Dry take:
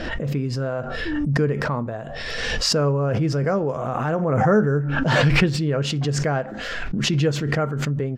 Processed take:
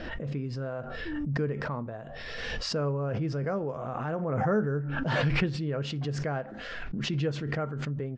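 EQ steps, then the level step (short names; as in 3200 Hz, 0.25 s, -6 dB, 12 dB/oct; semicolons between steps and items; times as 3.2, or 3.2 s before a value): LPF 6300 Hz 12 dB/oct; air absorption 52 m; -9.0 dB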